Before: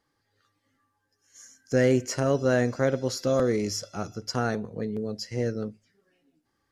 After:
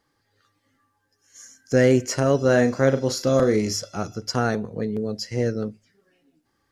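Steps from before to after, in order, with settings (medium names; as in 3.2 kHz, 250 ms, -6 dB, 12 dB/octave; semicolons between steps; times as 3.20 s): 2.44–3.76 s: doubling 37 ms -9 dB; trim +4.5 dB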